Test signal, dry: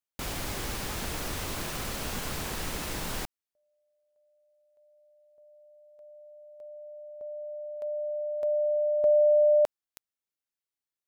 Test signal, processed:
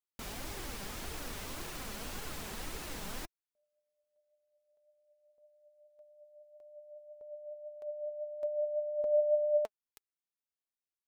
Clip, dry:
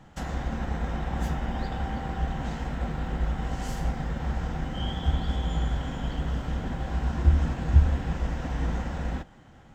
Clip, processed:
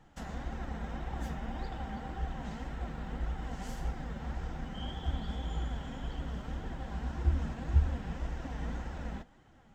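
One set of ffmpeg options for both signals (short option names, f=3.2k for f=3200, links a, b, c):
-af "flanger=delay=2.1:depth=3.1:regen=47:speed=1.8:shape=triangular,volume=-4dB"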